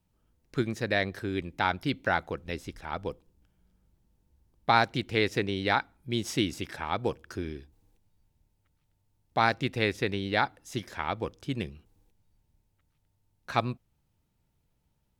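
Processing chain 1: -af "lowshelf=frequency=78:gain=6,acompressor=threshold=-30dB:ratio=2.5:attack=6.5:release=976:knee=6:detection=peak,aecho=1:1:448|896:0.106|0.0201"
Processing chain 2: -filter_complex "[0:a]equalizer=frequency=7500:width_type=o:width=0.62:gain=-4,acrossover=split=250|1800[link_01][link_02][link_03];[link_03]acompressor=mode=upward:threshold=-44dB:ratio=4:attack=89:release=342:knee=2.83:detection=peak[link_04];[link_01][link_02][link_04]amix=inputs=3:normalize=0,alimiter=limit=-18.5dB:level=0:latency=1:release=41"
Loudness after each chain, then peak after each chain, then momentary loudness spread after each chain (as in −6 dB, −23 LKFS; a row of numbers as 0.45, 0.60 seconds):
−37.0, −33.5 LKFS; −15.5, −18.5 dBFS; 9, 21 LU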